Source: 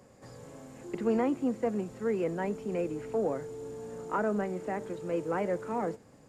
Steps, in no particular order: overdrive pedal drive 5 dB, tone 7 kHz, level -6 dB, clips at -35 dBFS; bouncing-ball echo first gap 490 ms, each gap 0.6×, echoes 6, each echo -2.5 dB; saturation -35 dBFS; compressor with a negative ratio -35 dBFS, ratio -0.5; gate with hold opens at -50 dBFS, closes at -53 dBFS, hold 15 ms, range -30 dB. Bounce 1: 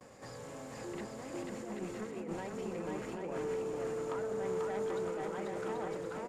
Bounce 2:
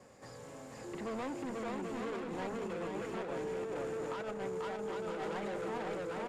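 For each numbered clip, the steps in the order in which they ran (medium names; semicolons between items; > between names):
gate with hold > compressor with a negative ratio > saturation > overdrive pedal > bouncing-ball echo; saturation > bouncing-ball echo > compressor with a negative ratio > gate with hold > overdrive pedal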